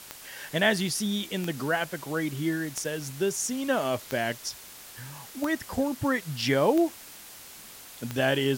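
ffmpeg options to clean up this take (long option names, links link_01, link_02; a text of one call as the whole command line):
ffmpeg -i in.wav -af "adeclick=threshold=4,afwtdn=0.0056" out.wav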